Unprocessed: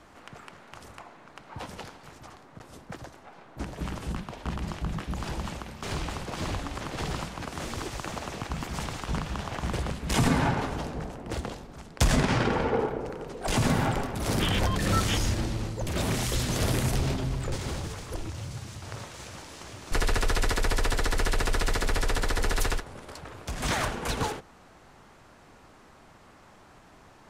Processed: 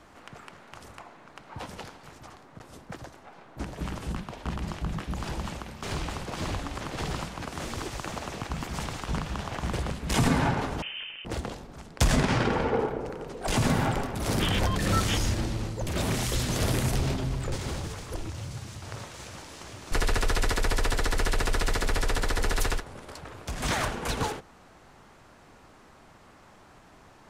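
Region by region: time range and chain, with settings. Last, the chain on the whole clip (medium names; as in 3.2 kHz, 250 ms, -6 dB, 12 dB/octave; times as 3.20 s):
10.82–11.25 s: one-bit delta coder 64 kbps, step -53 dBFS + high-pass 180 Hz 24 dB/octave + frequency inversion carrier 3.3 kHz
whole clip: none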